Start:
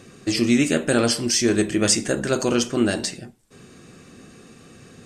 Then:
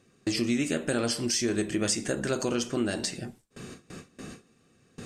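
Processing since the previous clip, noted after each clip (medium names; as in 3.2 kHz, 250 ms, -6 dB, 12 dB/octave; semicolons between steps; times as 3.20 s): gate with hold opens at -35 dBFS; compression 2.5:1, threshold -35 dBFS, peak gain reduction 14 dB; trim +4 dB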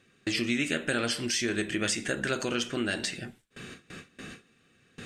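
high-order bell 2.3 kHz +8.5 dB; trim -3 dB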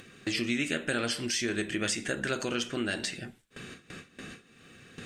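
upward compressor, threshold -39 dBFS; trim -1.5 dB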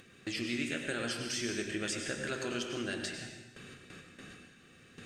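plate-style reverb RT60 1 s, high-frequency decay 1×, pre-delay 85 ms, DRR 4 dB; trim -6.5 dB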